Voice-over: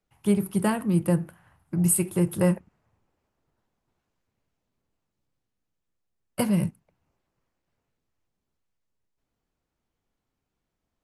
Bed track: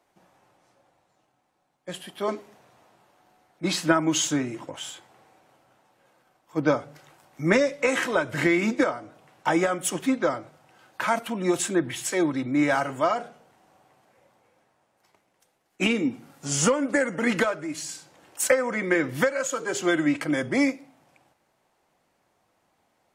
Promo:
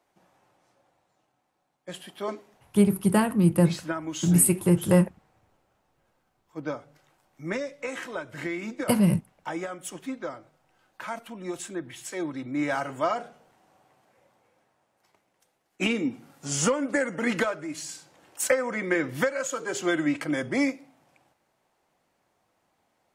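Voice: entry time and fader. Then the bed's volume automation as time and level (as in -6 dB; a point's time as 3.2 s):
2.50 s, +2.5 dB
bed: 2.12 s -3 dB
2.94 s -10.5 dB
11.84 s -10.5 dB
13.1 s -2.5 dB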